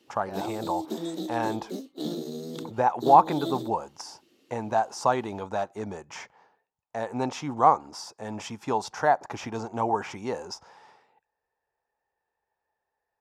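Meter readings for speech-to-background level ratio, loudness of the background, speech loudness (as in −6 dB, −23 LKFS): 8.0 dB, −35.5 LKFS, −27.5 LKFS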